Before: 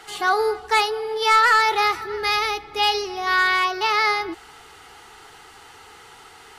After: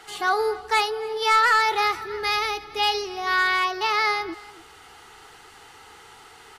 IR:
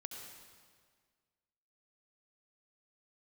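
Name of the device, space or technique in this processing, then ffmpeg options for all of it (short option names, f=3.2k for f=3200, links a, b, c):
ducked delay: -filter_complex "[0:a]asplit=3[a][b][c];[b]adelay=281,volume=-8.5dB[d];[c]apad=whole_len=302922[e];[d][e]sidechaincompress=threshold=-33dB:ratio=8:attack=16:release=788[f];[a][f]amix=inputs=2:normalize=0,volume=-2.5dB"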